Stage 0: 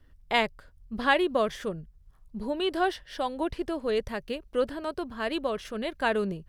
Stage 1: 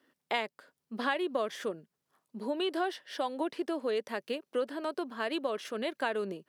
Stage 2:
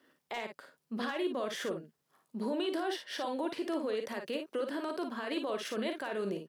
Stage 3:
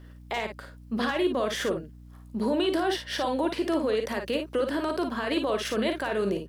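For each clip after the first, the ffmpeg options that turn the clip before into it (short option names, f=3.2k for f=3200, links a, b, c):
-af "highpass=f=240:w=0.5412,highpass=f=240:w=1.3066,acompressor=threshold=-29dB:ratio=3"
-af "asoftclip=type=hard:threshold=-19dB,alimiter=level_in=6dB:limit=-24dB:level=0:latency=1:release=10,volume=-6dB,aecho=1:1:42|55:0.299|0.447,volume=2.5dB"
-af "aeval=exprs='val(0)+0.002*(sin(2*PI*60*n/s)+sin(2*PI*2*60*n/s)/2+sin(2*PI*3*60*n/s)/3+sin(2*PI*4*60*n/s)/4+sin(2*PI*5*60*n/s)/5)':c=same,volume=8dB"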